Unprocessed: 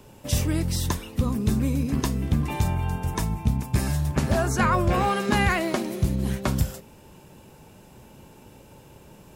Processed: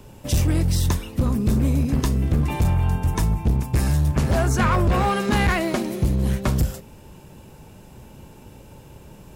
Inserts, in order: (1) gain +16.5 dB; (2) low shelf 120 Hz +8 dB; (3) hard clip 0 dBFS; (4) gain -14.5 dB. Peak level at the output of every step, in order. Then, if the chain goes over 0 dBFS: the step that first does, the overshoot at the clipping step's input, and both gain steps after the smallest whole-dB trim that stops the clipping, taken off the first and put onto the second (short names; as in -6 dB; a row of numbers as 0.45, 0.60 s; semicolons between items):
+5.0, +10.0, 0.0, -14.5 dBFS; step 1, 10.0 dB; step 1 +6.5 dB, step 4 -4.5 dB